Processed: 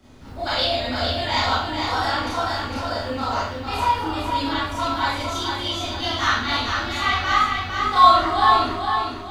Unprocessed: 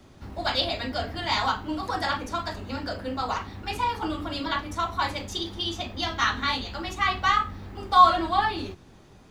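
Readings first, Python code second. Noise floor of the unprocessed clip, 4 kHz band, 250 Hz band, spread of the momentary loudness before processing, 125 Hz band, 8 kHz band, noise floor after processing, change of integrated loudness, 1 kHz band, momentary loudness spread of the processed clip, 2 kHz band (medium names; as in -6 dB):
-52 dBFS, +5.5 dB, +4.0 dB, 11 LU, +5.5 dB, +5.5 dB, -33 dBFS, +5.0 dB, +5.5 dB, 9 LU, +5.5 dB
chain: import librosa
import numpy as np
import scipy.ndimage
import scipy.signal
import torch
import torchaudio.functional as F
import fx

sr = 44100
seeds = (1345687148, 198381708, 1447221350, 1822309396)

p1 = x + fx.echo_feedback(x, sr, ms=454, feedback_pct=41, wet_db=-5.0, dry=0)
p2 = fx.rev_schroeder(p1, sr, rt60_s=0.52, comb_ms=25, drr_db=-7.5)
y = p2 * 10.0 ** (-4.0 / 20.0)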